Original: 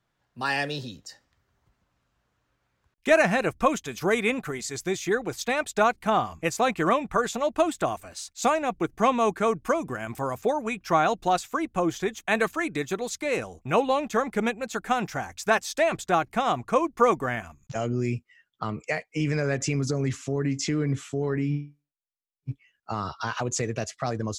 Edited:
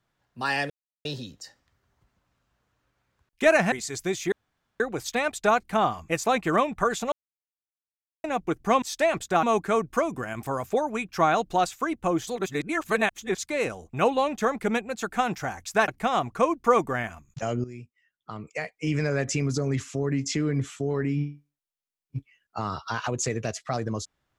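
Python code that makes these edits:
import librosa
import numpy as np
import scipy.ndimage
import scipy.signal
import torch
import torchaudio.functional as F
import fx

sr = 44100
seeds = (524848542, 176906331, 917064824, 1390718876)

y = fx.edit(x, sr, fx.insert_silence(at_s=0.7, length_s=0.35),
    fx.cut(start_s=3.37, length_s=1.16),
    fx.insert_room_tone(at_s=5.13, length_s=0.48),
    fx.silence(start_s=7.45, length_s=1.12),
    fx.reverse_span(start_s=11.99, length_s=1.11),
    fx.move(start_s=15.6, length_s=0.61, to_s=9.15),
    fx.fade_in_from(start_s=17.97, length_s=1.27, curve='qua', floor_db=-14.0), tone=tone)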